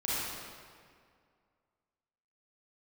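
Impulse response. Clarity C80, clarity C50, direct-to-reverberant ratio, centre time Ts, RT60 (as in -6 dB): -2.5 dB, -6.0 dB, -9.5 dB, 151 ms, 2.1 s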